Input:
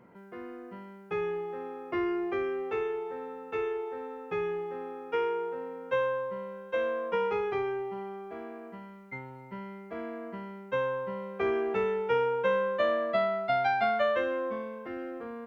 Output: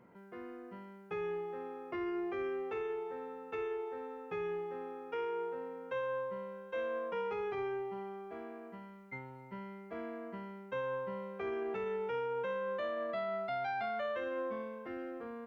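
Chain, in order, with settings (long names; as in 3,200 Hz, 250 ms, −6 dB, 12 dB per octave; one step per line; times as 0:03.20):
brickwall limiter −26 dBFS, peak gain reduction 9 dB
level −4.5 dB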